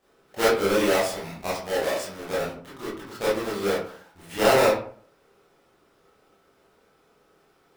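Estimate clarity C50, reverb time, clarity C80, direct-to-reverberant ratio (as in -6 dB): 2.0 dB, 0.50 s, 8.5 dB, -9.5 dB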